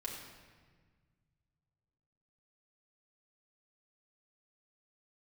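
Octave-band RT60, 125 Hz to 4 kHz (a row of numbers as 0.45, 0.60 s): 3.2, 2.2, 1.6, 1.5, 1.5, 1.2 s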